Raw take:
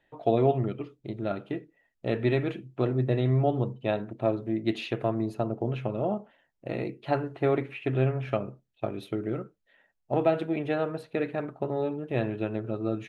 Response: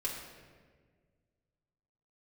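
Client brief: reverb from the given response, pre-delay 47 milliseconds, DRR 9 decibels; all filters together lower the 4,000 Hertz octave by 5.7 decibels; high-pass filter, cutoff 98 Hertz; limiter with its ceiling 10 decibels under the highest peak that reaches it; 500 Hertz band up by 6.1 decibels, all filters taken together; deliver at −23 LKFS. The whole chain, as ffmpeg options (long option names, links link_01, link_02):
-filter_complex "[0:a]highpass=98,equalizer=frequency=500:width_type=o:gain=8,equalizer=frequency=4000:width_type=o:gain=-7.5,alimiter=limit=-15.5dB:level=0:latency=1,asplit=2[link_01][link_02];[1:a]atrim=start_sample=2205,adelay=47[link_03];[link_02][link_03]afir=irnorm=-1:irlink=0,volume=-12dB[link_04];[link_01][link_04]amix=inputs=2:normalize=0,volume=4.5dB"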